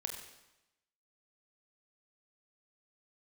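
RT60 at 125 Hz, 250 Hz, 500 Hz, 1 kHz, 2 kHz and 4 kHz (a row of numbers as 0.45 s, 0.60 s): 0.95 s, 0.95 s, 0.95 s, 0.95 s, 0.90 s, 0.90 s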